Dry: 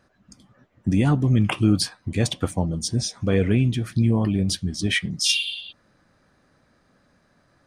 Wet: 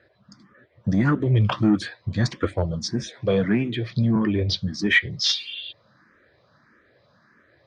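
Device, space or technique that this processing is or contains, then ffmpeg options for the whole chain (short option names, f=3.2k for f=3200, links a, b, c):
barber-pole phaser into a guitar amplifier: -filter_complex "[0:a]asettb=1/sr,asplit=3[a][b][c];[a]atrim=end=3.084[d];[b]atrim=start=3.08:end=4.16,asetpts=PTS-STARTPTS,afade=t=in:d=0.004:c=qsin,afade=t=out:st=1.076:d=0.004:c=qsin,highpass=f=120:w=0.5412,highpass=f=120:w=1.3066[e];[c]atrim=start=4.156[f];[d][e]acrossfade=d=0.004:c1=hsin:c2=qsin[g];[g][f]acrossfade=d=0.004:c1=qsin:c2=hsin,asplit=2[h][i];[i]afreqshift=1.6[j];[h][j]amix=inputs=2:normalize=1,asoftclip=type=tanh:threshold=-15dB,highpass=110,equalizer=f=170:t=q:w=4:g=-7,equalizer=f=260:t=q:w=4:g=-8,equalizer=f=800:t=q:w=4:g=-8,equalizer=f=1.8k:t=q:w=4:g=4,equalizer=f=2.8k:t=q:w=4:g=-8,lowpass=f=4.5k:w=0.5412,lowpass=f=4.5k:w=1.3066,volume=8dB"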